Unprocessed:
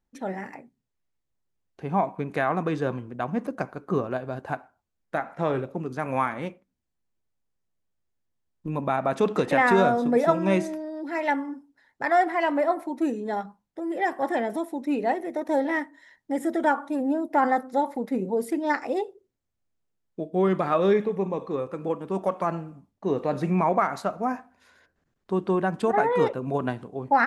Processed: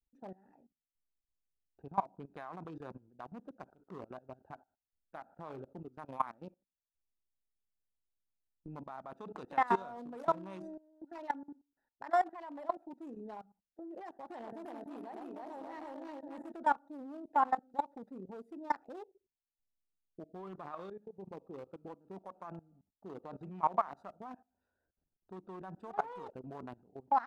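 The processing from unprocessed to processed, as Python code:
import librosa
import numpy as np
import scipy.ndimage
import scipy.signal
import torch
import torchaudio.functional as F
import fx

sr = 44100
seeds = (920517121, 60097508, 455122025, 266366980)

y = fx.echo_multitap(x, sr, ms=(63, 115, 331, 420, 593, 713), db=(-16.0, -7.5, -3.5, -14.0, -8.0, -14.0), at=(14.32, 16.53))
y = fx.edit(y, sr, fx.fade_in_from(start_s=20.9, length_s=0.57, floor_db=-14.0), tone=tone)
y = fx.wiener(y, sr, points=41)
y = fx.graphic_eq(y, sr, hz=(125, 250, 500, 1000, 2000), db=(-8, -4, -6, 8, -7))
y = fx.level_steps(y, sr, step_db=20)
y = y * 10.0 ** (-5.5 / 20.0)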